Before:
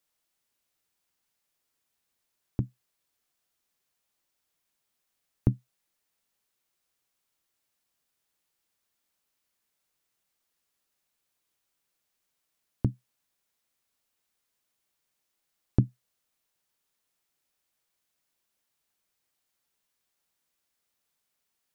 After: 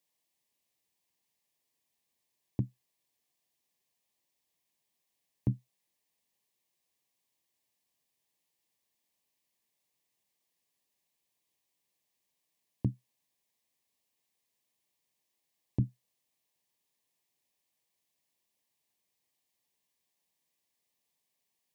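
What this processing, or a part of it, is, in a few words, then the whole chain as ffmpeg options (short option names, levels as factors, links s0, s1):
PA system with an anti-feedback notch: -af "highpass=130,asuperstop=centerf=1400:order=4:qfactor=2.7,alimiter=limit=0.106:level=0:latency=1:release=13,lowshelf=f=84:g=12,volume=0.794"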